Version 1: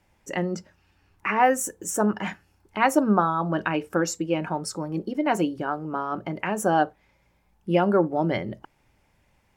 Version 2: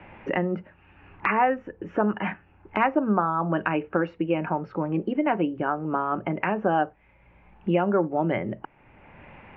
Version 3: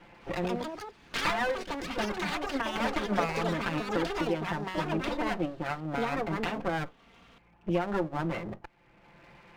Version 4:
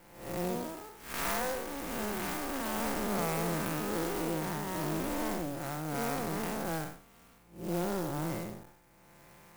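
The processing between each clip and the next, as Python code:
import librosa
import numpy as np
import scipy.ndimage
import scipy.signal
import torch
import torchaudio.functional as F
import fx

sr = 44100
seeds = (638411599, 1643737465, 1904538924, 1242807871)

y1 = scipy.signal.sosfilt(scipy.signal.ellip(4, 1.0, 70, 2700.0, 'lowpass', fs=sr, output='sos'), x)
y1 = fx.band_squash(y1, sr, depth_pct=70)
y2 = fx.lower_of_two(y1, sr, delay_ms=5.8)
y2 = fx.echo_pitch(y2, sr, ms=219, semitones=5, count=3, db_per_echo=-3.0)
y2 = y2 * librosa.db_to_amplitude(-5.5)
y3 = fx.spec_blur(y2, sr, span_ms=191.0)
y3 = fx.clock_jitter(y3, sr, seeds[0], jitter_ms=0.069)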